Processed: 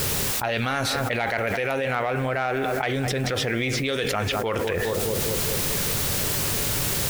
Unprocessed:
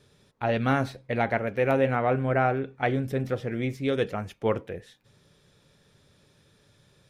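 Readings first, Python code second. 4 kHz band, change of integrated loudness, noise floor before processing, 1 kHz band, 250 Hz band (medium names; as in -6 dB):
+16.5 dB, +3.0 dB, -63 dBFS, +2.0 dB, +0.5 dB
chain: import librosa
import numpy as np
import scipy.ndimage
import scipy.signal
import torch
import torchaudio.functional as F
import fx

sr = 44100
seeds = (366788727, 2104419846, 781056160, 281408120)

p1 = 10.0 ** (-19.0 / 20.0) * np.tanh(x / 10.0 ** (-19.0 / 20.0))
p2 = x + (p1 * 10.0 ** (-5.5 / 20.0))
p3 = fx.peak_eq(p2, sr, hz=190.0, db=-8.5, octaves=2.5)
p4 = p3 + fx.echo_filtered(p3, sr, ms=206, feedback_pct=56, hz=2000.0, wet_db=-18.0, dry=0)
p5 = fx.env_lowpass(p4, sr, base_hz=430.0, full_db=-25.0)
p6 = fx.high_shelf(p5, sr, hz=2500.0, db=11.5)
p7 = fx.dmg_noise_colour(p6, sr, seeds[0], colour='white', level_db=-60.0)
p8 = fx.env_flatten(p7, sr, amount_pct=100)
y = p8 * 10.0 ** (-6.0 / 20.0)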